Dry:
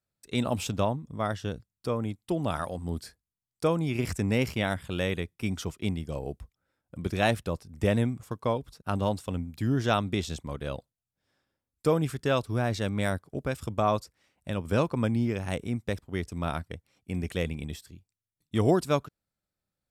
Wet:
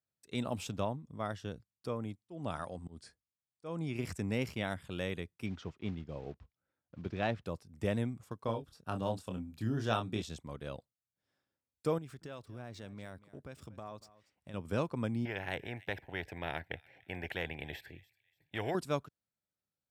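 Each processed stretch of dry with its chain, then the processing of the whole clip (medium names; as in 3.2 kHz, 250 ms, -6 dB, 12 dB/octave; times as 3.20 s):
2.16–3.96 s: Chebyshev low-pass 10 kHz, order 5 + slow attack 185 ms
5.46–7.45 s: block-companded coder 5-bit + distance through air 190 m
8.44–10.22 s: band-stop 2.1 kHz, Q 8.8 + doubling 27 ms -6 dB
11.98–14.54 s: median filter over 3 samples + compression 3:1, threshold -38 dBFS + delay 236 ms -18 dB
15.25–18.75 s: FFT filter 130 Hz 0 dB, 220 Hz -11 dB, 360 Hz 0 dB, 570 Hz +2 dB, 820 Hz +6 dB, 1.2 kHz -19 dB, 1.7 kHz +10 dB, 5.9 kHz -22 dB, 9.7 kHz -24 dB, 14 kHz -7 dB + feedback echo behind a high-pass 291 ms, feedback 32%, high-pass 4.9 kHz, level -16.5 dB + spectrum-flattening compressor 2:1
whole clip: high-pass 76 Hz; treble shelf 9.5 kHz -4 dB; trim -8 dB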